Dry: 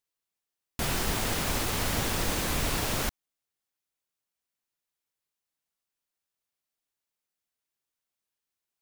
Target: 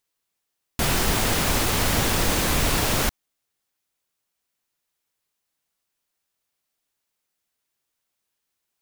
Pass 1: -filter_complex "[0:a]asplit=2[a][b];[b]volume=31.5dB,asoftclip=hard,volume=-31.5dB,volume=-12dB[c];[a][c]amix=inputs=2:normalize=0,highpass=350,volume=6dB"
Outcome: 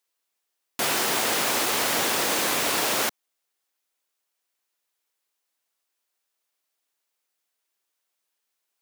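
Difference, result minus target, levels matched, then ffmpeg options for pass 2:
250 Hz band -5.5 dB
-filter_complex "[0:a]asplit=2[a][b];[b]volume=31.5dB,asoftclip=hard,volume=-31.5dB,volume=-12dB[c];[a][c]amix=inputs=2:normalize=0,volume=6dB"

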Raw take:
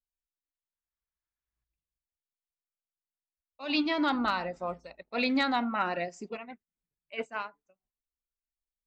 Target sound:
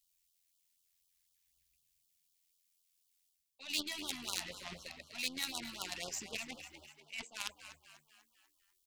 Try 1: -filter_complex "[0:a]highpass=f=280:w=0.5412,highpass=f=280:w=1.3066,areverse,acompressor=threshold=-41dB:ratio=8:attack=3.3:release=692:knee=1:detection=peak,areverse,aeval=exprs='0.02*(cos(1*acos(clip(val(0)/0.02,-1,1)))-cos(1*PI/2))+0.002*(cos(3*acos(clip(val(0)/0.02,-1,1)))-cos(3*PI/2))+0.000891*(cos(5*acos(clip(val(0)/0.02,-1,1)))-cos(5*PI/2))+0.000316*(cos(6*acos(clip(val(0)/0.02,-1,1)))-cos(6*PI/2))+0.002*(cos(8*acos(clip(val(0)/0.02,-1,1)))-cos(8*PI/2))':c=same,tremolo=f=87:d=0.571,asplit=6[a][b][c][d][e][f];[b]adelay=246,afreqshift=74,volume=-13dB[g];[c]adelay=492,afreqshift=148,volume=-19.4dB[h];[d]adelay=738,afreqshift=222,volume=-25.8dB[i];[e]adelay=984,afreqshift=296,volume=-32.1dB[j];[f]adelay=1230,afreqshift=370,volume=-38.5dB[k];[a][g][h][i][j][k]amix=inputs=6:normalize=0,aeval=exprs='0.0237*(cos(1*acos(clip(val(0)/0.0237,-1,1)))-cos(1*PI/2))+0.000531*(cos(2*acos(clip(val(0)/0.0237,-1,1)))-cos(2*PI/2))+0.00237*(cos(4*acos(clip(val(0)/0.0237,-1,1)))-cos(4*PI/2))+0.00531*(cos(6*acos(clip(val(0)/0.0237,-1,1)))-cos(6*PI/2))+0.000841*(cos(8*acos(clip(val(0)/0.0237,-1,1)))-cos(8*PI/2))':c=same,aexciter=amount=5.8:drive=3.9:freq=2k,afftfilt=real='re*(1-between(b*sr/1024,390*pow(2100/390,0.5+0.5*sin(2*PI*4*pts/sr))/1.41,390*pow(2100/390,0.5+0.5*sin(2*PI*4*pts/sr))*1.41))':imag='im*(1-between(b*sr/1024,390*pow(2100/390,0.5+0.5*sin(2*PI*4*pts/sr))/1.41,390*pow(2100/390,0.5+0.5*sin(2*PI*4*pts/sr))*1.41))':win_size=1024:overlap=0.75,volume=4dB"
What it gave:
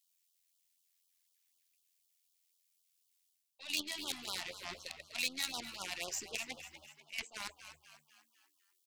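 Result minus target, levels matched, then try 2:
250 Hz band -3.5 dB
-filter_complex "[0:a]areverse,acompressor=threshold=-41dB:ratio=8:attack=3.3:release=692:knee=1:detection=peak,areverse,aeval=exprs='0.02*(cos(1*acos(clip(val(0)/0.02,-1,1)))-cos(1*PI/2))+0.002*(cos(3*acos(clip(val(0)/0.02,-1,1)))-cos(3*PI/2))+0.000891*(cos(5*acos(clip(val(0)/0.02,-1,1)))-cos(5*PI/2))+0.000316*(cos(6*acos(clip(val(0)/0.02,-1,1)))-cos(6*PI/2))+0.002*(cos(8*acos(clip(val(0)/0.02,-1,1)))-cos(8*PI/2))':c=same,tremolo=f=87:d=0.571,asplit=6[a][b][c][d][e][f];[b]adelay=246,afreqshift=74,volume=-13dB[g];[c]adelay=492,afreqshift=148,volume=-19.4dB[h];[d]adelay=738,afreqshift=222,volume=-25.8dB[i];[e]adelay=984,afreqshift=296,volume=-32.1dB[j];[f]adelay=1230,afreqshift=370,volume=-38.5dB[k];[a][g][h][i][j][k]amix=inputs=6:normalize=0,aeval=exprs='0.0237*(cos(1*acos(clip(val(0)/0.0237,-1,1)))-cos(1*PI/2))+0.000531*(cos(2*acos(clip(val(0)/0.0237,-1,1)))-cos(2*PI/2))+0.00237*(cos(4*acos(clip(val(0)/0.0237,-1,1)))-cos(4*PI/2))+0.00531*(cos(6*acos(clip(val(0)/0.0237,-1,1)))-cos(6*PI/2))+0.000841*(cos(8*acos(clip(val(0)/0.0237,-1,1)))-cos(8*PI/2))':c=same,aexciter=amount=5.8:drive=3.9:freq=2k,afftfilt=real='re*(1-between(b*sr/1024,390*pow(2100/390,0.5+0.5*sin(2*PI*4*pts/sr))/1.41,390*pow(2100/390,0.5+0.5*sin(2*PI*4*pts/sr))*1.41))':imag='im*(1-between(b*sr/1024,390*pow(2100/390,0.5+0.5*sin(2*PI*4*pts/sr))/1.41,390*pow(2100/390,0.5+0.5*sin(2*PI*4*pts/sr))*1.41))':win_size=1024:overlap=0.75,volume=4dB"

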